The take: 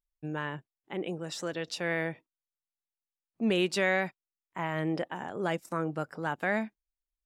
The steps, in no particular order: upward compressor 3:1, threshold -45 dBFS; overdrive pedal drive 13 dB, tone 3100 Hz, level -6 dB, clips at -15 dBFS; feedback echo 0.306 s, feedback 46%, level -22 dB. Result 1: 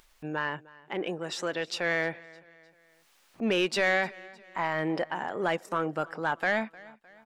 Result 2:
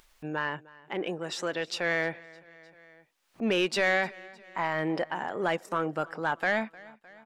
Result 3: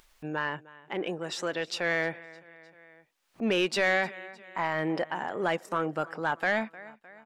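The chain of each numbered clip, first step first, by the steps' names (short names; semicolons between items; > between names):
overdrive pedal > upward compressor > feedback echo; overdrive pedal > feedback echo > upward compressor; feedback echo > overdrive pedal > upward compressor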